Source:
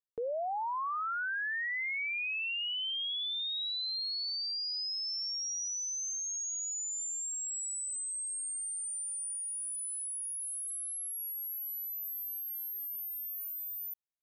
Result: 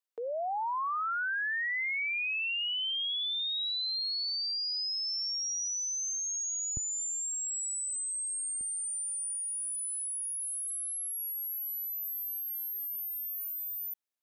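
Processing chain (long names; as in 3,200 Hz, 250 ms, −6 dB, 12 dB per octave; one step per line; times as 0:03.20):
high-pass filter 540 Hz 12 dB per octave, from 0:06.77 100 Hz, from 0:08.61 270 Hz
level +2.5 dB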